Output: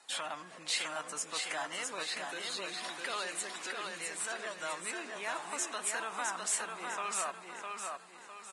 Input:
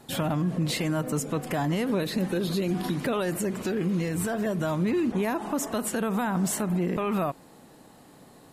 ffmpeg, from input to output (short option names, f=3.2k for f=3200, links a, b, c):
-af "highpass=1.1k,aecho=1:1:656|1312|1968|2624|3280:0.631|0.252|0.101|0.0404|0.0162,volume=-2.5dB" -ar 22050 -c:a libvorbis -b:a 32k